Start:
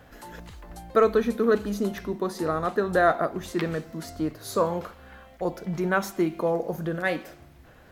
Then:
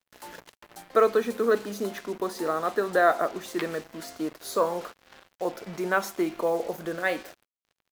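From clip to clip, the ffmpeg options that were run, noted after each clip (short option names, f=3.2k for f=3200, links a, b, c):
-af "highpass=310,acrusher=bits=6:mix=0:aa=0.5"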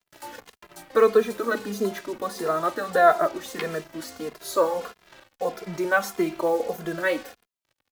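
-filter_complex "[0:a]asplit=2[a][b];[b]adelay=2.5,afreqshift=-1.6[c];[a][c]amix=inputs=2:normalize=1,volume=5.5dB"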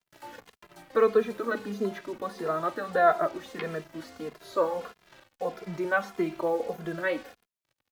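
-filter_complex "[0:a]acrossover=split=4000[a][b];[b]acompressor=threshold=-52dB:ratio=4:attack=1:release=60[c];[a][c]amix=inputs=2:normalize=0,equalizer=f=140:t=o:w=1.1:g=3.5,volume=-4.5dB"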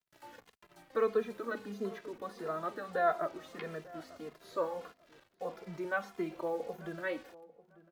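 -filter_complex "[0:a]asplit=2[a][b];[b]adelay=894,lowpass=f=1.4k:p=1,volume=-19dB,asplit=2[c][d];[d]adelay=894,lowpass=f=1.4k:p=1,volume=0.27[e];[a][c][e]amix=inputs=3:normalize=0,volume=-8dB"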